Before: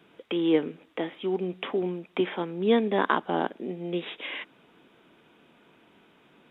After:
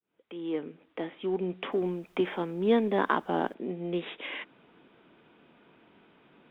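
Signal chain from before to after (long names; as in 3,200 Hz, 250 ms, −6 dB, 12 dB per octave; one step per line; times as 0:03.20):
fade in at the beginning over 1.47 s
downsampling to 11,025 Hz
in parallel at −11.5 dB: hard clipping −29.5 dBFS, distortion −4 dB
on the sum: high-frequency loss of the air 180 metres
0:01.71–0:03.53: background noise pink −67 dBFS
level −2 dB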